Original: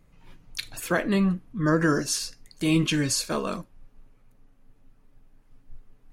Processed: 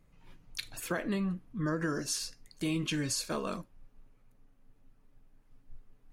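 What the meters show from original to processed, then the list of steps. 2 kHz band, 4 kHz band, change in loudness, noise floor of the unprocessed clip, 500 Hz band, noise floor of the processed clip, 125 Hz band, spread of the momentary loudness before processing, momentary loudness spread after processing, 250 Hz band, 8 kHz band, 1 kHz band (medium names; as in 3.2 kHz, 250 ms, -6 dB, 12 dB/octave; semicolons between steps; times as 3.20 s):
-9.5 dB, -7.5 dB, -9.0 dB, -59 dBFS, -9.5 dB, -65 dBFS, -9.5 dB, 14 LU, 10 LU, -9.5 dB, -7.0 dB, -9.0 dB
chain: compression, threshold -23 dBFS, peak gain reduction 6.5 dB; trim -5.5 dB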